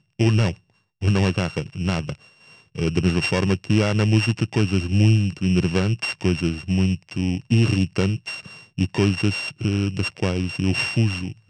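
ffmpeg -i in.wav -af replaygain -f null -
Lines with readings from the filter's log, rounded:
track_gain = +3.6 dB
track_peak = 0.311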